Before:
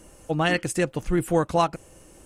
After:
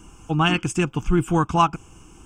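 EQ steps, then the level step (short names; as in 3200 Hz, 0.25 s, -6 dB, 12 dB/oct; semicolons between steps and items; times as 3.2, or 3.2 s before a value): tone controls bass -1 dB, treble -5 dB; fixed phaser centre 2800 Hz, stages 8; +7.5 dB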